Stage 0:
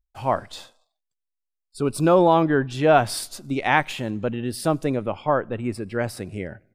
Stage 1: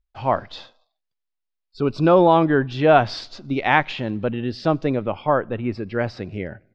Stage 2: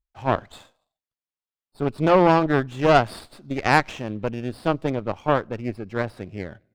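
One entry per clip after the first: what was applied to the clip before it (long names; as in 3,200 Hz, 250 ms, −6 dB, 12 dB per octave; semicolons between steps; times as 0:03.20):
inverse Chebyshev low-pass filter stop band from 9,000 Hz, stop band 40 dB; level +2 dB
harmonic generator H 2 −8 dB, 6 −18 dB, 7 −32 dB, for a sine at −1 dBFS; windowed peak hold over 5 samples; level −4.5 dB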